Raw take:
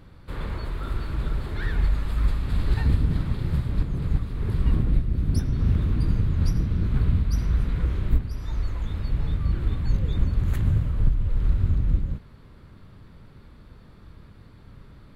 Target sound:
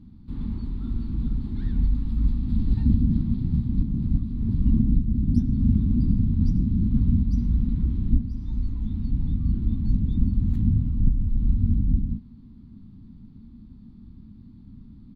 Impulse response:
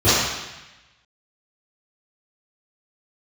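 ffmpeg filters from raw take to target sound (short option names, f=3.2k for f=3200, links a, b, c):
-af "firequalizer=gain_entry='entry(150,0);entry(230,13);entry(380,-12);entry(550,-25);entry(820,-13);entry(1500,-22);entry(4000,-11);entry(8400,-21)':delay=0.05:min_phase=1"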